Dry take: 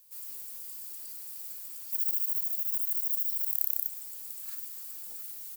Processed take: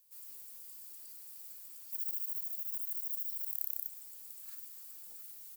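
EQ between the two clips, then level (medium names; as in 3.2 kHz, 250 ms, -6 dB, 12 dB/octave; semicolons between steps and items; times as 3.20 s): high-pass 53 Hz; -8.0 dB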